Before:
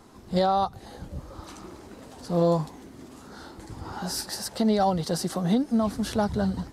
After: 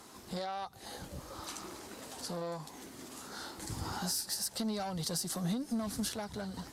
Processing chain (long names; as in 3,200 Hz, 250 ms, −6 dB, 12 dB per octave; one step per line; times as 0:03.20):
tube saturation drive 18 dB, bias 0.25
spectral tilt +2.5 dB per octave
surface crackle 260 per second −60 dBFS
downward compressor 6 to 1, threshold −37 dBFS, peak gain reduction 14 dB
0:03.62–0:06.09: bass and treble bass +9 dB, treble +4 dB